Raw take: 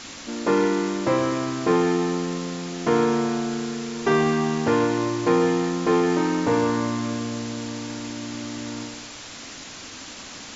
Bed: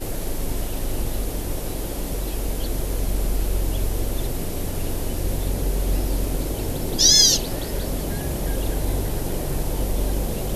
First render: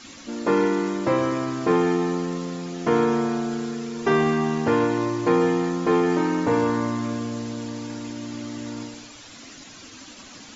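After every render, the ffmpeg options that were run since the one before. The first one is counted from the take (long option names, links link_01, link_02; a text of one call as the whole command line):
ffmpeg -i in.wav -af "afftdn=noise_reduction=9:noise_floor=-39" out.wav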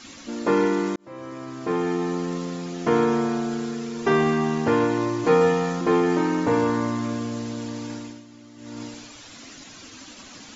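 ffmpeg -i in.wav -filter_complex "[0:a]asettb=1/sr,asplit=3[link_01][link_02][link_03];[link_01]atrim=end=5.234[link_04];[link_02]atrim=start=5.23:end=5.81,asetpts=PTS-STARTPTS,afade=type=in:duration=0.004:curve=qsin,afade=type=out:start_time=0.576:duration=0.004:curve=qsin,asplit=2[link_05][link_06];[link_06]adelay=13,volume=-2dB[link_07];[link_05][link_07]amix=inputs=2:normalize=0,atrim=end_sample=25578[link_08];[link_03]atrim=start=5.806[link_09];[link_04][link_08]acrossfade=duration=0.004:curve1=hsin:curve2=qsin[link_10];[link_10][link_09]acrossfade=duration=0.004:curve1=qsin:curve2=hsin,asplit=4[link_11][link_12][link_13][link_14];[link_11]atrim=end=0.96,asetpts=PTS-STARTPTS,afade=type=out:start_time=0.956:duration=0.004:curve=hsin[link_15];[link_12]atrim=start=0.96:end=8.24,asetpts=PTS-STARTPTS,afade=type=in:duration=1.39,afade=type=out:start_time=6.97:duration=0.31:silence=0.211349[link_16];[link_13]atrim=start=8.24:end=8.56,asetpts=PTS-STARTPTS,volume=-13.5dB[link_17];[link_14]atrim=start=8.56,asetpts=PTS-STARTPTS,afade=type=in:duration=0.31:silence=0.211349[link_18];[link_15][link_16][link_17][link_18]concat=n=4:v=0:a=1" out.wav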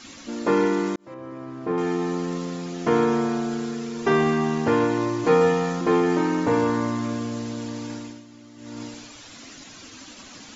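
ffmpeg -i in.wav -filter_complex "[0:a]asettb=1/sr,asplit=3[link_01][link_02][link_03];[link_01]atrim=end=1.144[link_04];[link_02]atrim=start=1.14:end=1.78,asetpts=PTS-STARTPTS,afade=type=in:duration=0.004:curve=qsin,afade=type=out:start_time=0.636:duration=0.004:curve=qsin,lowpass=frequency=1300:poles=1[link_05];[link_03]atrim=start=1.776[link_06];[link_04][link_05]acrossfade=duration=0.004:curve1=hsin:curve2=qsin[link_07];[link_07][link_06]acrossfade=duration=0.004:curve1=qsin:curve2=hsin" out.wav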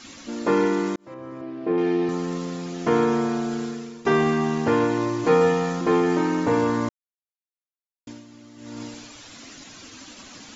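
ffmpeg -i in.wav -filter_complex "[0:a]asettb=1/sr,asplit=3[link_01][link_02][link_03];[link_01]atrim=end=1.414[link_04];[link_02]atrim=start=1.41:end=2.09,asetpts=PTS-STARTPTS,afade=type=in:duration=0.004:curve=qsin,afade=type=out:start_time=0.676:duration=0.004:curve=qsin,highpass=110,equalizer=frequency=130:width_type=q:width=4:gain=-6,equalizer=frequency=340:width_type=q:width=4:gain=5,equalizer=frequency=610:width_type=q:width=4:gain=5,equalizer=frequency=920:width_type=q:width=4:gain=-5,equalizer=frequency=1300:width_type=q:width=4:gain=-6,equalizer=frequency=2600:width_type=q:width=4:gain=3,lowpass=frequency=4800:width=0.5412,lowpass=frequency=4800:width=1.3066[link_05];[link_03]atrim=start=2.086[link_06];[link_04][link_05]acrossfade=duration=0.004:curve1=hsin:curve2=qsin[link_07];[link_07][link_06]acrossfade=duration=0.004:curve1=qsin:curve2=hsin,asplit=4[link_08][link_09][link_10][link_11];[link_08]atrim=end=4.05,asetpts=PTS-STARTPTS,afade=type=out:start_time=3.63:duration=0.42:silence=0.211349[link_12];[link_09]atrim=start=4.05:end=6.89,asetpts=PTS-STARTPTS,afade=type=in:duration=0.004:curve=hsin:silence=0.211349,afade=type=out:start_time=2.836:duration=0.004:curve=hsin[link_13];[link_10]atrim=start=6.89:end=8.07,asetpts=PTS-STARTPTS,volume=0[link_14];[link_11]atrim=start=8.07,asetpts=PTS-STARTPTS,afade=type=in:duration=0.004:curve=hsin[link_15];[link_12][link_13][link_14][link_15]concat=n=4:v=0:a=1" out.wav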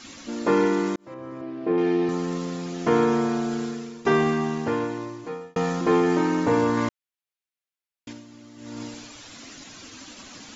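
ffmpeg -i in.wav -filter_complex "[0:a]asettb=1/sr,asplit=3[link_01][link_02][link_03];[link_01]atrim=end=6.774[link_04];[link_02]atrim=start=6.77:end=8.13,asetpts=PTS-STARTPTS,afade=type=in:duration=0.004:curve=qsin,afade=type=out:start_time=1.356:duration=0.004:curve=qsin,equalizer=frequency=2500:width=0.82:gain=6.5[link_05];[link_03]atrim=start=8.126[link_06];[link_04][link_05]acrossfade=duration=0.004:curve1=hsin:curve2=qsin[link_07];[link_07][link_06]acrossfade=duration=0.004:curve1=qsin:curve2=hsin,asplit=2[link_08][link_09];[link_08]atrim=end=5.56,asetpts=PTS-STARTPTS,afade=type=out:start_time=4.07:duration=1.49[link_10];[link_09]atrim=start=5.56,asetpts=PTS-STARTPTS,afade=type=in:duration=0.004:curve=hsin[link_11];[link_10][link_11]concat=n=2:v=0:a=1" out.wav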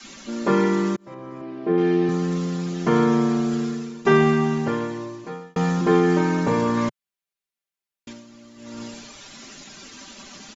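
ffmpeg -i in.wav -af "adynamicequalizer=threshold=0.0112:dfrequency=130:dqfactor=1.1:tfrequency=130:tqfactor=1.1:attack=5:release=100:ratio=0.375:range=3:mode=boostabove:tftype=bell,aecho=1:1:5.1:0.58" out.wav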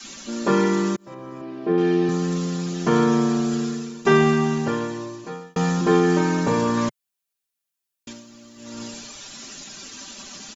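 ffmpeg -i in.wav -af "highshelf=frequency=5200:gain=9.5,bandreject=frequency=2100:width=16" out.wav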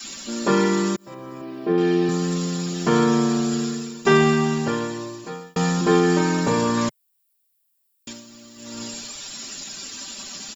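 ffmpeg -i in.wav -af "aemphasis=mode=production:type=50kf,bandreject=frequency=6200:width=6.5" out.wav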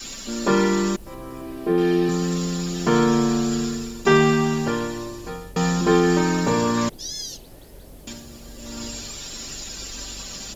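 ffmpeg -i in.wav -i bed.wav -filter_complex "[1:a]volume=-18dB[link_01];[0:a][link_01]amix=inputs=2:normalize=0" out.wav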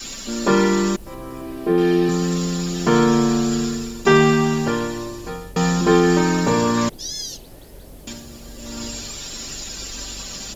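ffmpeg -i in.wav -af "volume=2.5dB,alimiter=limit=-3dB:level=0:latency=1" out.wav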